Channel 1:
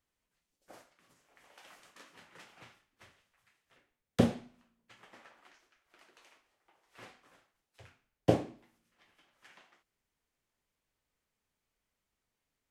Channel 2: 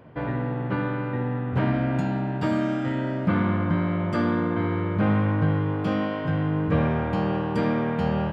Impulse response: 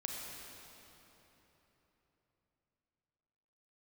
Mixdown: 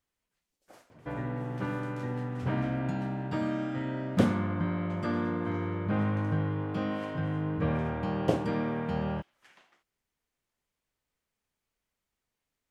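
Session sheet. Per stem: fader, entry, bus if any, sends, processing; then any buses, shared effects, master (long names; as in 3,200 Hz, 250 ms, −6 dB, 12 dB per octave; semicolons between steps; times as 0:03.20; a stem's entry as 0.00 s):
−0.5 dB, 0.00 s, no send, no processing
−7.0 dB, 0.90 s, no send, no processing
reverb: not used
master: no processing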